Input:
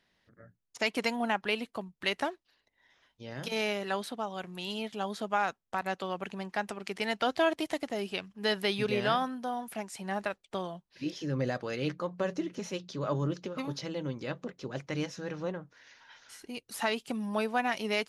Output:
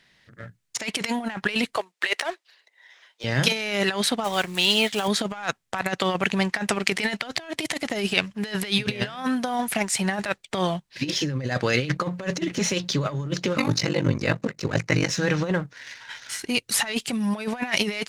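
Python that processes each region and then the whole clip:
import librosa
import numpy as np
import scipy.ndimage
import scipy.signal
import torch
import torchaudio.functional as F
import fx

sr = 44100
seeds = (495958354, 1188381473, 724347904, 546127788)

y = fx.chain(x, sr, fx.median_filter(points=3),
    fx.highpass(hz=420.0, slope=24), at=(1.76, 3.24))
y = fx.chain(y, sr, fx.block_float(bits=5),
    fx.bass_treble(bass_db=-7, treble_db=0), at=(4.24, 5.08))
y = fx.chain(y, sr, fx.peak_eq(hz=3300.0, db=-11.0, octaves=0.22),
    fx.ring_mod(carrier_hz=24.0), at=(13.56, 15.1))
y = fx.leveller(y, sr, passes=1)
y = fx.over_compress(y, sr, threshold_db=-32.0, ratio=-0.5)
y = fx.graphic_eq(y, sr, hz=(125, 2000, 4000, 8000), db=(7, 7, 4, 7))
y = y * 10.0 ** (5.5 / 20.0)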